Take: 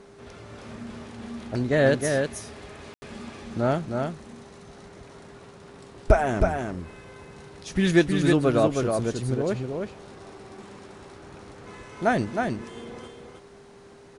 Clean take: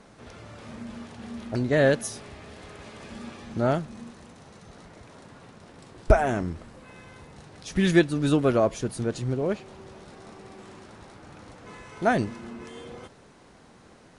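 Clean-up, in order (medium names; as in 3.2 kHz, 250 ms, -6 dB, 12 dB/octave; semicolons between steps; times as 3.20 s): band-stop 400 Hz, Q 30; room tone fill 2.94–3.02 s; inverse comb 315 ms -4.5 dB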